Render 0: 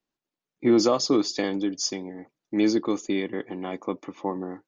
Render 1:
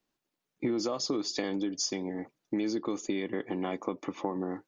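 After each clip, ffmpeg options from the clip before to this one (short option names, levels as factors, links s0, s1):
-filter_complex "[0:a]asplit=2[s0][s1];[s1]alimiter=limit=0.0944:level=0:latency=1:release=77,volume=0.891[s2];[s0][s2]amix=inputs=2:normalize=0,acompressor=threshold=0.0447:ratio=6,volume=0.841"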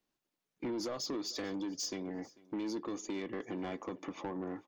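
-af "asoftclip=type=tanh:threshold=0.0335,aecho=1:1:444|888:0.0708|0.0142,volume=0.708"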